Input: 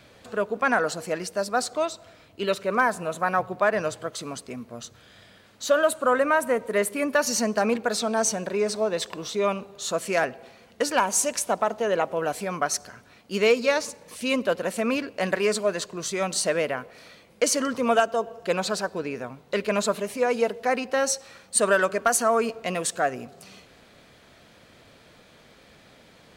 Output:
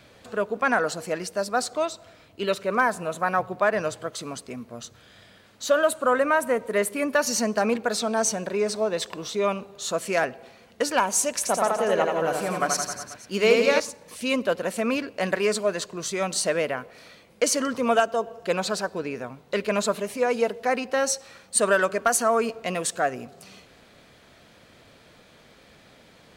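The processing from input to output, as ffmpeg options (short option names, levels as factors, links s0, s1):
-filter_complex "[0:a]asettb=1/sr,asplit=3[s0][s1][s2];[s0]atrim=end=11.344[s3];[s1]atrim=start=11.34:end=13.8,asetpts=PTS-STARTPTS,afade=t=in:d=0.004:c=qsin,afade=t=out:st=2.456:d=0.004:c=qsin,aecho=1:1:80|168|264.8|371.3|488.4:0.631|0.398|0.251|0.158|0.1,atrim=end_sample=108486[s4];[s2]atrim=start=13.796[s5];[s3][s4]acrossfade=d=0.004:c1=hsin:c2=qsin[s6];[s6][s5]acrossfade=d=0.004:c1=qsin:c2=hsin"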